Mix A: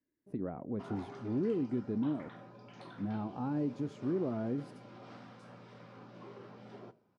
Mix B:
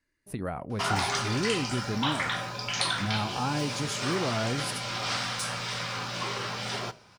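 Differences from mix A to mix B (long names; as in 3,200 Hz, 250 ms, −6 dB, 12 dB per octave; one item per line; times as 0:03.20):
background +8.0 dB
master: remove resonant band-pass 290 Hz, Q 1.3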